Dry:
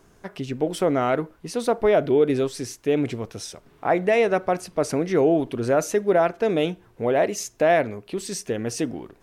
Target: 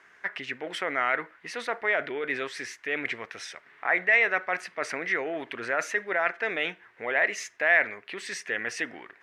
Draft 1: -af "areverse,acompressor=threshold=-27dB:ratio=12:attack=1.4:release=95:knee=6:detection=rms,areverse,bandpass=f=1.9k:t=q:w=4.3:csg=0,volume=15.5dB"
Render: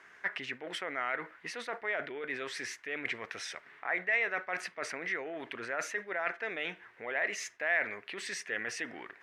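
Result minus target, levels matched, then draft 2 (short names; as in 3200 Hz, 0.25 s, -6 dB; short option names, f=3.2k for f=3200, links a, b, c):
compressor: peak gain reduction +8.5 dB
-af "areverse,acompressor=threshold=-17.5dB:ratio=12:attack=1.4:release=95:knee=6:detection=rms,areverse,bandpass=f=1.9k:t=q:w=4.3:csg=0,volume=15.5dB"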